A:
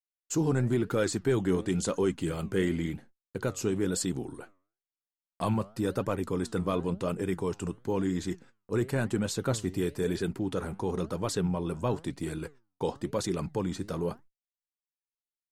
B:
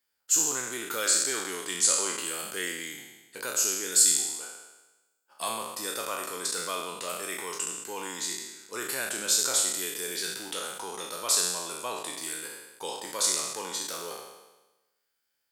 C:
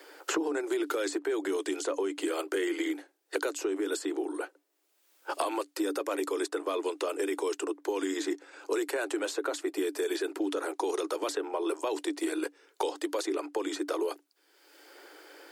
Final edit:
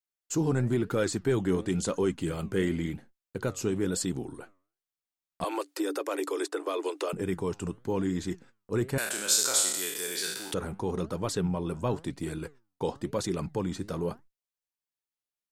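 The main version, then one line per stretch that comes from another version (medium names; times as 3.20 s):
A
5.44–7.13 s: from C
8.98–10.54 s: from B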